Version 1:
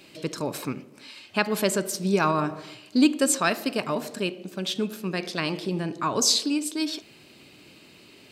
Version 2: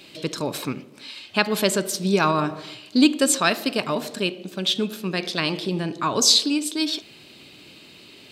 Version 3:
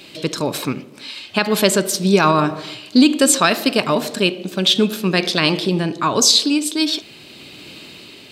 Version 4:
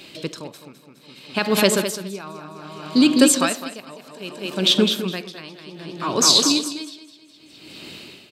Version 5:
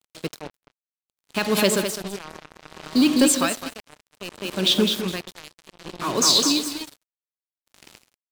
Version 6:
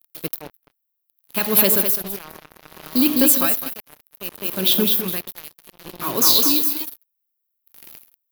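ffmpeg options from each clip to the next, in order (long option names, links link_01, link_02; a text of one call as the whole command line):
ffmpeg -i in.wav -af "equalizer=frequency=3600:width_type=o:width=0.66:gain=6.5,volume=2.5dB" out.wav
ffmpeg -i in.wav -af "dynaudnorm=framelen=600:gausssize=3:maxgain=4.5dB,alimiter=level_in=6.5dB:limit=-1dB:release=50:level=0:latency=1,volume=-1dB" out.wav
ffmpeg -i in.wav -filter_complex "[0:a]asplit=2[link_01][link_02];[link_02]aecho=0:1:207|414|621|828|1035|1242:0.562|0.276|0.135|0.0662|0.0324|0.0159[link_03];[link_01][link_03]amix=inputs=2:normalize=0,aeval=exprs='val(0)*pow(10,-22*(0.5-0.5*cos(2*PI*0.63*n/s))/20)':channel_layout=same,volume=-1.5dB" out.wav
ffmpeg -i in.wav -af "acontrast=37,acrusher=bits=3:mix=0:aa=0.5,volume=-7dB" out.wav
ffmpeg -i in.wav -af "aexciter=amount=10.8:drive=6.9:freq=11000,volume=-1dB" out.wav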